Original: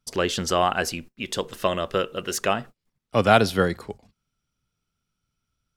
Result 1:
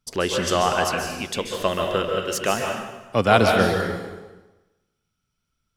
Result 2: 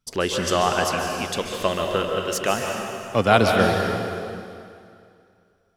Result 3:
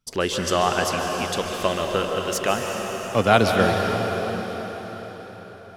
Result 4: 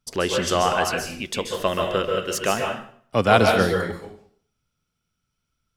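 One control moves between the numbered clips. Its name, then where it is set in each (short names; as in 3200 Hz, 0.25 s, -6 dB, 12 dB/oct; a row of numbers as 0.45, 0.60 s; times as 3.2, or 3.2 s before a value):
plate-style reverb, RT60: 1.1, 2.4, 5.1, 0.54 s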